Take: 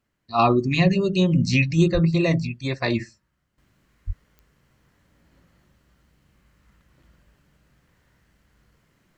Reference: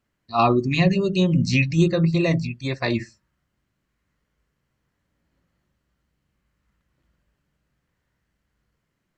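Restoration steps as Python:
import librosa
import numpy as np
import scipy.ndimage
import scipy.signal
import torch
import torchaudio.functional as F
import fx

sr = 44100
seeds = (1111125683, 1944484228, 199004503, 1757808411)

y = fx.fix_declick_ar(x, sr, threshold=10.0)
y = fx.fix_deplosive(y, sr, at_s=(1.93, 4.06))
y = fx.gain(y, sr, db=fx.steps((0.0, 0.0), (3.58, -11.5)))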